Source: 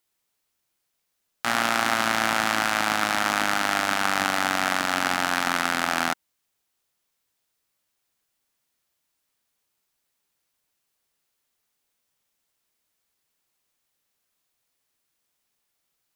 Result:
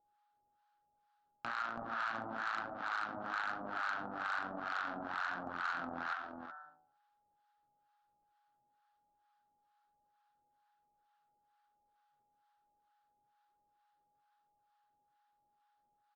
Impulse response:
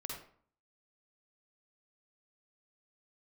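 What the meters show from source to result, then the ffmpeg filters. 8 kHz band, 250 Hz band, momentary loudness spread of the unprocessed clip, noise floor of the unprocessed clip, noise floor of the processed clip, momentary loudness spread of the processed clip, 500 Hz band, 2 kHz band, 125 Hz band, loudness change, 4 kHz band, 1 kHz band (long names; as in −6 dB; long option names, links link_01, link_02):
below −30 dB, −17.0 dB, 2 LU, −77 dBFS, −79 dBFS, 4 LU, −16.5 dB, −15.5 dB, −17.5 dB, −16.5 dB, −24.0 dB, −14.5 dB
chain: -filter_complex "[0:a]lowpass=frequency=3900:width=0.5412,lowpass=frequency=3900:width=1.3066,highshelf=frequency=1800:width_type=q:width=3:gain=-6,bandreject=frequency=53.69:width_type=h:width=4,bandreject=frequency=107.38:width_type=h:width=4,bandreject=frequency=161.07:width_type=h:width=4,bandreject=frequency=214.76:width_type=h:width=4,bandreject=frequency=268.45:width_type=h:width=4,bandreject=frequency=322.14:width_type=h:width=4,bandreject=frequency=375.83:width_type=h:width=4,bandreject=frequency=429.52:width_type=h:width=4,bandreject=frequency=483.21:width_type=h:width=4,bandreject=frequency=536.9:width_type=h:width=4,bandreject=frequency=590.59:width_type=h:width=4,bandreject=frequency=644.28:width_type=h:width=4,bandreject=frequency=697.97:width_type=h:width=4,bandreject=frequency=751.66:width_type=h:width=4,bandreject=frequency=805.35:width_type=h:width=4,bandreject=frequency=859.04:width_type=h:width=4,bandreject=frequency=912.73:width_type=h:width=4,bandreject=frequency=966.42:width_type=h:width=4,bandreject=frequency=1020.11:width_type=h:width=4,bandreject=frequency=1073.8:width_type=h:width=4,bandreject=frequency=1127.49:width_type=h:width=4,bandreject=frequency=1181.18:width_type=h:width=4,bandreject=frequency=1234.87:width_type=h:width=4,bandreject=frequency=1288.56:width_type=h:width=4,bandreject=frequency=1342.25:width_type=h:width=4,bandreject=frequency=1395.94:width_type=h:width=4,bandreject=frequency=1449.63:width_type=h:width=4,bandreject=frequency=1503.32:width_type=h:width=4,bandreject=frequency=1557.01:width_type=h:width=4,bandreject=frequency=1610.7:width_type=h:width=4,bandreject=frequency=1664.39:width_type=h:width=4,bandreject=frequency=1718.08:width_type=h:width=4,bandreject=frequency=1771.77:width_type=h:width=4,bandreject=frequency=1825.46:width_type=h:width=4,acompressor=threshold=-31dB:ratio=16,asplit=2[link_01][link_02];[link_02]aecho=0:1:328|372|384:0.501|0.282|0.158[link_03];[link_01][link_03]amix=inputs=2:normalize=0,flanger=delay=1.6:depth=6.4:regen=70:speed=1.1:shape=sinusoidal,aeval=exprs='val(0)+0.000178*sin(2*PI*830*n/s)':channel_layout=same,acrossover=split=780[link_04][link_05];[link_04]aeval=exprs='val(0)*(1-1/2+1/2*cos(2*PI*2.2*n/s))':channel_layout=same[link_06];[link_05]aeval=exprs='val(0)*(1-1/2-1/2*cos(2*PI*2.2*n/s))':channel_layout=same[link_07];[link_06][link_07]amix=inputs=2:normalize=0,aresample=16000,volume=35dB,asoftclip=hard,volume=-35dB,aresample=44100,volume=5.5dB"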